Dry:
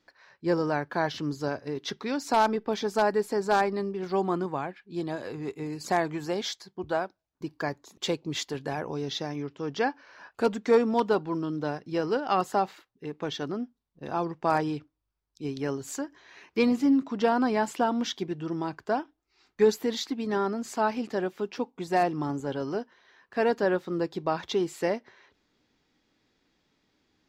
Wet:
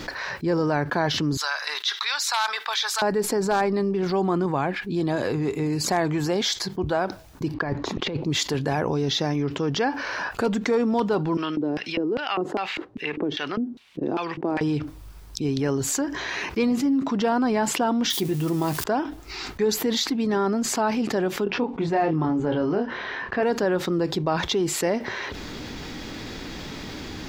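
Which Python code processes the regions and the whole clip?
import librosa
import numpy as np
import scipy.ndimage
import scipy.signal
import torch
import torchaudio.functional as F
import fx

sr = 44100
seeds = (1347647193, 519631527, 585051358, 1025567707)

y = fx.chain(x, sr, fx.highpass(hz=1100.0, slope=24),
    fx.peak_eq(hz=3800.0, db=8.5, octaves=0.31), at=(1.37, 3.02))
y = fx.chain(y, sr, fx.block_float(bits=7),
    fx.over_compress(threshold_db=-36.0, ratio=-0.5),
    fx.air_absorb(metres=250.0), at=(7.54, 8.24))
y = fx.chain(y, sr, fx.filter_lfo_bandpass(shape='square', hz=2.5, low_hz=330.0, high_hz=2600.0, q=2.5),
    fx.band_squash(depth_pct=70), at=(11.37, 14.61))
y = fx.chain(y, sr, fx.crossing_spikes(level_db=-35.5),
    fx.peak_eq(hz=1500.0, db=-6.0, octaves=0.26),
    fx.doubler(ms=14.0, db=-12.5), at=(18.1, 18.84))
y = fx.chain(y, sr, fx.lowpass(hz=3100.0, slope=12),
    fx.doubler(ms=25.0, db=-5.5), at=(21.44, 23.43))
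y = fx.low_shelf(y, sr, hz=150.0, db=6.5)
y = fx.env_flatten(y, sr, amount_pct=70)
y = F.gain(torch.from_numpy(y), -3.5).numpy()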